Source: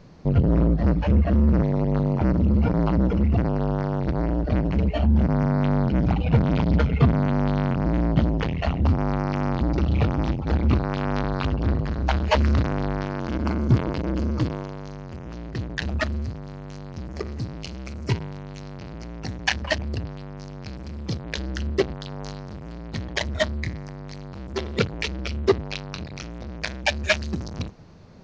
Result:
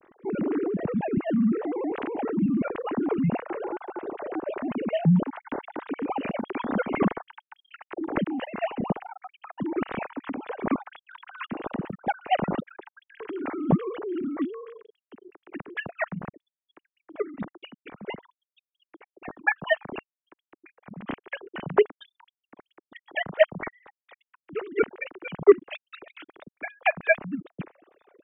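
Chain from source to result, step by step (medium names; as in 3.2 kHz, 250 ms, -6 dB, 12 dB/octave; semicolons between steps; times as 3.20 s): formants replaced by sine waves; trim -6 dB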